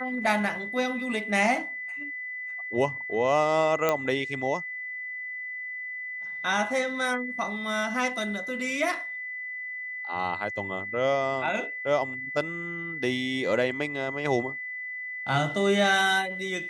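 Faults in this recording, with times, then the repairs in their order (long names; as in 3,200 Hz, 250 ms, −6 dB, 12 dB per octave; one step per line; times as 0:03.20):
whistle 2,000 Hz −33 dBFS
0:03.89: click −10 dBFS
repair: click removal
notch filter 2,000 Hz, Q 30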